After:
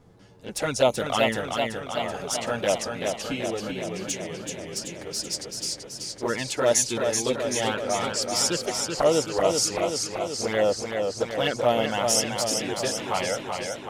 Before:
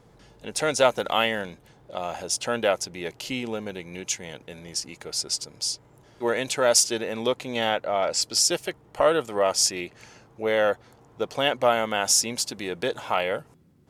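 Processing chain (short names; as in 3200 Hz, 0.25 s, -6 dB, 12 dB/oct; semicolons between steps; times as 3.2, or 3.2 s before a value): low shelf 350 Hz +6 dB; envelope flanger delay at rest 12 ms, full sweep at -15.5 dBFS; warbling echo 0.382 s, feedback 68%, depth 59 cents, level -5 dB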